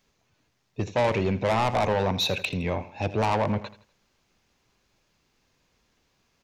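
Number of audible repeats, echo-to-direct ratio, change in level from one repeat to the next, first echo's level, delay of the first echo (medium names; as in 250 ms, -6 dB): 3, -15.0 dB, -9.0 dB, -15.5 dB, 82 ms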